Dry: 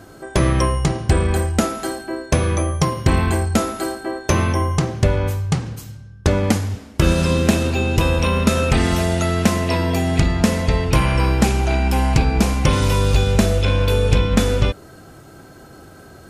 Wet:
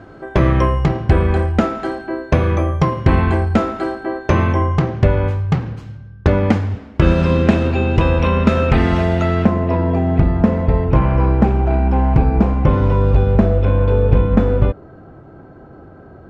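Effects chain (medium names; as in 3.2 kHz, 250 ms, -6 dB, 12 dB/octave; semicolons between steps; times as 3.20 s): low-pass 2.3 kHz 12 dB/octave, from 9.45 s 1.1 kHz; trim +3 dB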